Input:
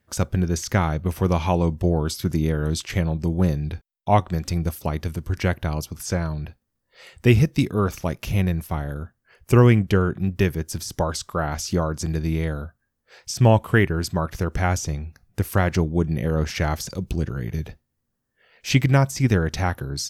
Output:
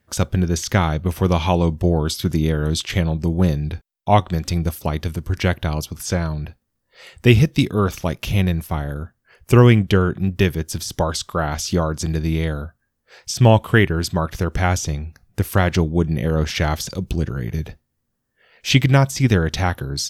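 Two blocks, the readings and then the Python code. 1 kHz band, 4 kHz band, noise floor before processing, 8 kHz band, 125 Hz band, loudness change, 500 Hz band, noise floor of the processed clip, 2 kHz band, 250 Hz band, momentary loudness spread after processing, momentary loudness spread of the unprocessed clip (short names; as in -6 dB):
+3.0 dB, +6.5 dB, -77 dBFS, +3.5 dB, +3.0 dB, +3.0 dB, +3.0 dB, -74 dBFS, +4.0 dB, +3.0 dB, 12 LU, 12 LU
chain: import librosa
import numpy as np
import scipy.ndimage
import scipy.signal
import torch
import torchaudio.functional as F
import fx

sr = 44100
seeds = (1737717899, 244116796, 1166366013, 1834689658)

y = fx.dynamic_eq(x, sr, hz=3400.0, q=2.4, threshold_db=-50.0, ratio=4.0, max_db=7)
y = F.gain(torch.from_numpy(y), 3.0).numpy()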